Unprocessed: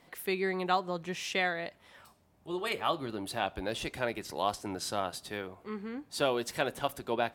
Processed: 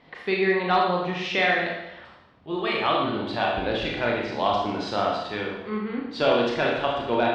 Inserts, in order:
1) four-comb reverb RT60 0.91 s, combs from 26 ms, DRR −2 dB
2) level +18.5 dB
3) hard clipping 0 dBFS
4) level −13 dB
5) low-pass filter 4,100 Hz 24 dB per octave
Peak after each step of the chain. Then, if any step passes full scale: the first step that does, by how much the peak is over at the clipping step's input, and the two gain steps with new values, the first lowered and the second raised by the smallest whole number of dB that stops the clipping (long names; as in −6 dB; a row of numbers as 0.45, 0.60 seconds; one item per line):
−12.0, +6.5, 0.0, −13.0, −12.0 dBFS
step 2, 6.5 dB
step 2 +11.5 dB, step 4 −6 dB